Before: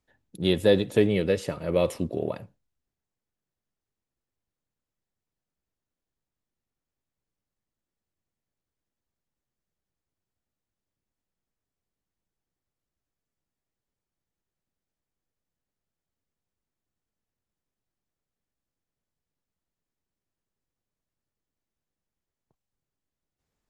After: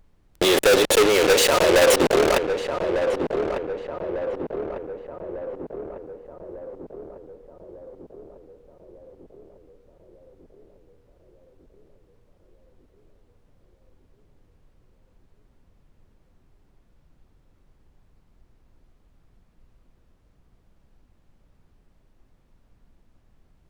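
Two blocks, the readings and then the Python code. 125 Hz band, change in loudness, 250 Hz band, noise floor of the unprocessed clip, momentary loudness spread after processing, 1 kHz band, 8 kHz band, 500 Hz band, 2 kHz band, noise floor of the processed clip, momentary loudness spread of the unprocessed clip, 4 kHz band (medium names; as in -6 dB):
-3.5 dB, +4.5 dB, +3.0 dB, under -85 dBFS, 22 LU, +17.0 dB, +21.5 dB, +8.5 dB, +14.0 dB, -62 dBFS, 10 LU, +12.5 dB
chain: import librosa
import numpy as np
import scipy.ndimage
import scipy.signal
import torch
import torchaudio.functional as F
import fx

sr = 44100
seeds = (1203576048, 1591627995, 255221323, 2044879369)

y = fx.octave_divider(x, sr, octaves=1, level_db=-2.0)
y = scipy.signal.sosfilt(scipy.signal.butter(4, 400.0, 'highpass', fs=sr, output='sos'), y)
y = fx.high_shelf(y, sr, hz=9700.0, db=-11.0)
y = fx.notch(y, sr, hz=5100.0, q=10.0)
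y = fx.level_steps(y, sr, step_db=23)
y = fx.fuzz(y, sr, gain_db=55.0, gate_db=-50.0)
y = fx.dmg_noise_colour(y, sr, seeds[0], colour='brown', level_db=-58.0)
y = fx.echo_filtered(y, sr, ms=1199, feedback_pct=62, hz=1100.0, wet_db=-6)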